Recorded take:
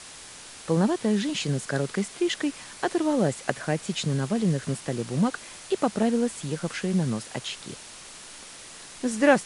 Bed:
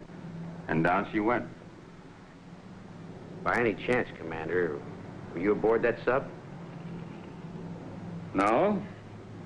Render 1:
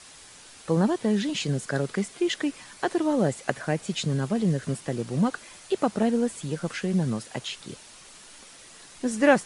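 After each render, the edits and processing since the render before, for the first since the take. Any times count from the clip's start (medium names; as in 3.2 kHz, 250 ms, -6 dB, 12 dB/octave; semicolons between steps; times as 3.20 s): noise reduction 6 dB, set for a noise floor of -44 dBFS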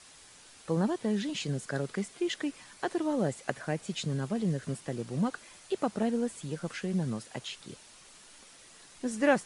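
trim -6 dB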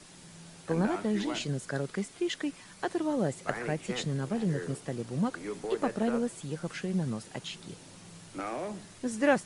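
add bed -11.5 dB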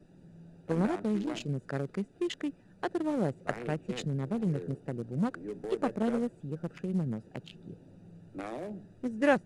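local Wiener filter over 41 samples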